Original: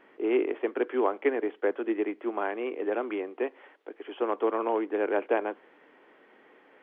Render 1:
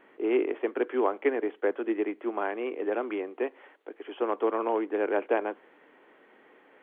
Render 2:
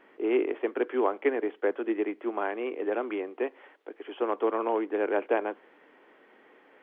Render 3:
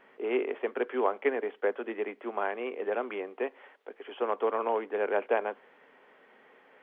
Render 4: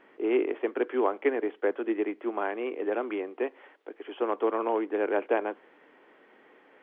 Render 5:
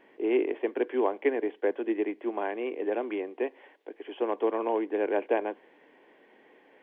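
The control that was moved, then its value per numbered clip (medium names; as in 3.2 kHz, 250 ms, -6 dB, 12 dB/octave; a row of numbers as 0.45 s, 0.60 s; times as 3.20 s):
peaking EQ, frequency: 5.2 kHz, 120 Hz, 320 Hz, 14 kHz, 1.3 kHz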